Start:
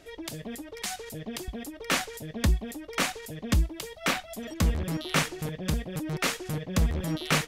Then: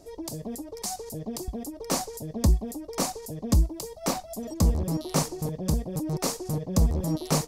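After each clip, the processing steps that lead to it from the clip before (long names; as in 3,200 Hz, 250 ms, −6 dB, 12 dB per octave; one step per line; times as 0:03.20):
flat-topped bell 2,200 Hz −16 dB
level +3 dB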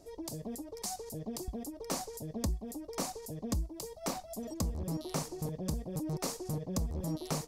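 downward compressor 4 to 1, threshold −26 dBFS, peak gain reduction 9 dB
level −5.5 dB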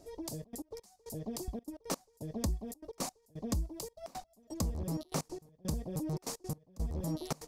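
gate pattern "xxxxx.x.x...x" 170 BPM −24 dB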